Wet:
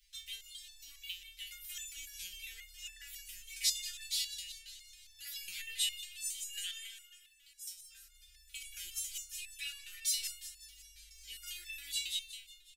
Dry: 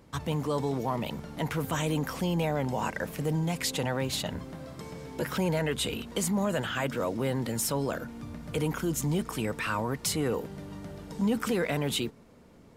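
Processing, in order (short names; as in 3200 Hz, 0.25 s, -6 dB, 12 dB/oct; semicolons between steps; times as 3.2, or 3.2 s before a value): inverse Chebyshev band-stop 110–1100 Hz, stop band 50 dB; 1.86–2.42 negative-ratio compressor -47 dBFS, ratio -0.5; 6.65–8.17 dip -14 dB, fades 0.31 s; feedback echo 0.182 s, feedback 52%, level -9 dB; stepped resonator 7.3 Hz 180–890 Hz; gain +13.5 dB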